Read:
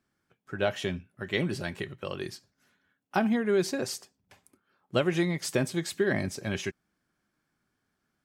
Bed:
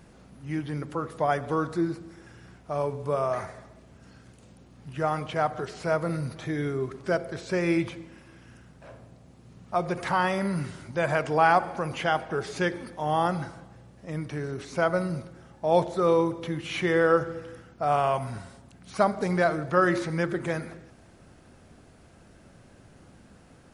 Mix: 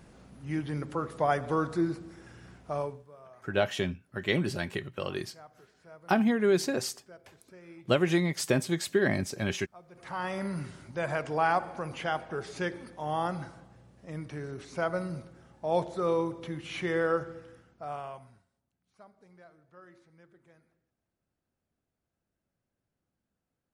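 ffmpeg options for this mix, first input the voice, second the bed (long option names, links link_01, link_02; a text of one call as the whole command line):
ffmpeg -i stem1.wav -i stem2.wav -filter_complex "[0:a]adelay=2950,volume=1dB[link_01];[1:a]volume=18dB,afade=type=out:start_time=2.69:duration=0.37:silence=0.0630957,afade=type=in:start_time=9.91:duration=0.5:silence=0.105925,afade=type=out:start_time=16.99:duration=1.47:silence=0.0501187[link_02];[link_01][link_02]amix=inputs=2:normalize=0" out.wav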